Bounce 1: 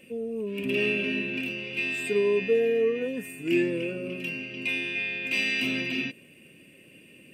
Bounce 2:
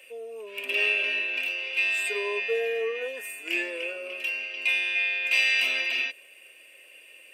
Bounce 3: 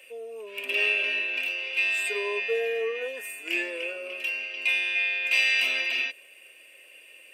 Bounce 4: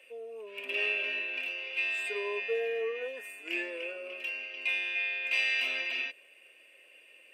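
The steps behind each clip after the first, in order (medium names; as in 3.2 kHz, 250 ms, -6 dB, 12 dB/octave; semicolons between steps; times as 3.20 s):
high-pass 590 Hz 24 dB/octave; trim +4.5 dB
no audible change
treble shelf 4.9 kHz -10.5 dB; trim -4 dB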